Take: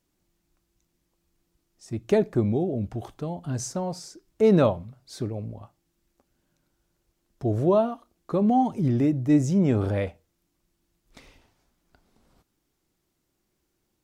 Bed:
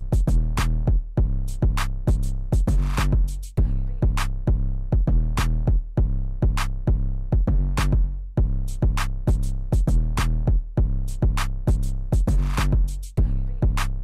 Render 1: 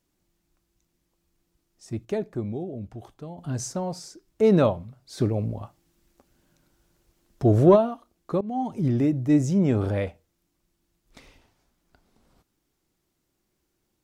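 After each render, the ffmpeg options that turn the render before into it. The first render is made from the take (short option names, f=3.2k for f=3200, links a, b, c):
-filter_complex "[0:a]asplit=3[a][b][c];[a]afade=t=out:st=5.17:d=0.02[d];[b]acontrast=72,afade=t=in:st=5.17:d=0.02,afade=t=out:st=7.75:d=0.02[e];[c]afade=t=in:st=7.75:d=0.02[f];[d][e][f]amix=inputs=3:normalize=0,asplit=4[g][h][i][j];[g]atrim=end=2.052[k];[h]atrim=start=2.048:end=3.382,asetpts=PTS-STARTPTS,volume=-7dB[l];[i]atrim=start=3.378:end=8.41,asetpts=PTS-STARTPTS,afade=t=out:st=5.028:d=0.004:c=hsin:silence=0.1[m];[j]atrim=start=8.41,asetpts=PTS-STARTPTS,afade=t=in:d=0.44:silence=0.1[n];[k][l]acrossfade=d=0.004:c1=hsin:c2=hsin[o];[m][n]concat=n=2:v=0:a=1[p];[o][p]acrossfade=d=0.004:c1=hsin:c2=hsin"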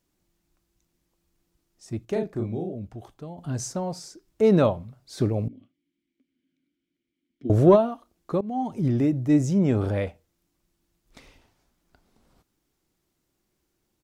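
-filter_complex "[0:a]asplit=3[a][b][c];[a]afade=t=out:st=2.12:d=0.02[d];[b]asplit=2[e][f];[f]adelay=36,volume=-4dB[g];[e][g]amix=inputs=2:normalize=0,afade=t=in:st=2.12:d=0.02,afade=t=out:st=2.72:d=0.02[h];[c]afade=t=in:st=2.72:d=0.02[i];[d][h][i]amix=inputs=3:normalize=0,asettb=1/sr,asplit=3[j][k][l];[j]atrim=end=5.484[m];[k]atrim=start=5.48:end=7.5,asetpts=PTS-STARTPTS,afade=t=in:d=0.004:c=qsin,afade=t=out:st=2.016:d=0.004:c=qsin,asplit=3[n][o][p];[n]bandpass=f=270:t=q:w=8,volume=0dB[q];[o]bandpass=f=2.29k:t=q:w=8,volume=-6dB[r];[p]bandpass=f=3.01k:t=q:w=8,volume=-9dB[s];[q][r][s]amix=inputs=3:normalize=0[t];[l]atrim=start=7.496[u];[m][t]acrossfade=d=0.004:c1=hsin:c2=qsin[v];[v][u]acrossfade=d=0.004:c1=qsin:c2=hsin"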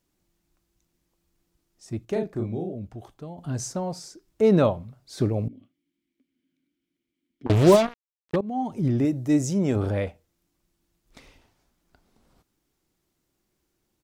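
-filter_complex "[0:a]asettb=1/sr,asplit=3[a][b][c];[a]atrim=end=7.464[d];[b]atrim=start=7.46:end=8.36,asetpts=PTS-STARTPTS,afade=t=in:d=0.004:c=qsin,afade=t=out:st=0.896:d=0.004:c=qsin,acrusher=bits=3:mix=0:aa=0.5[e];[c]atrim=start=8.356[f];[d][e]acrossfade=d=0.004:c1=hsin:c2=qsin[g];[g][f]acrossfade=d=0.004:c1=qsin:c2=hsin,asettb=1/sr,asplit=3[h][i][j];[h]atrim=end=9.054[k];[i]atrim=start=9.05:end=9.76,asetpts=PTS-STARTPTS,afade=t=in:d=0.004:c=qsin,afade=t=out:st=0.706:d=0.004:c=qsin,bass=f=250:g=-4,treble=f=4k:g=7[l];[j]atrim=start=9.756[m];[k][l]acrossfade=d=0.004:c1=hsin:c2=qsin[n];[n][m]acrossfade=d=0.004:c1=qsin:c2=hsin"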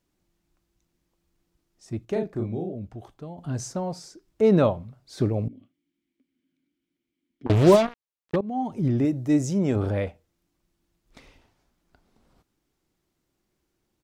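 -af "highshelf=f=6k:g=-5.5"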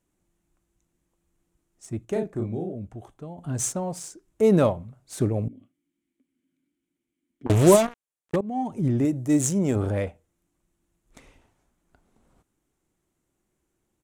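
-af "aexciter=amount=11.3:drive=4.5:freq=7k,adynamicsmooth=sensitivity=7.5:basefreq=4.3k"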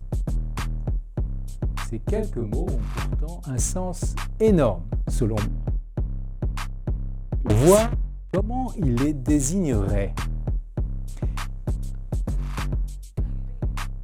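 -filter_complex "[1:a]volume=-6dB[a];[0:a][a]amix=inputs=2:normalize=0"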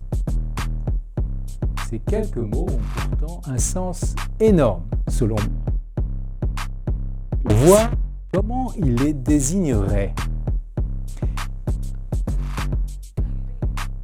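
-af "volume=3dB"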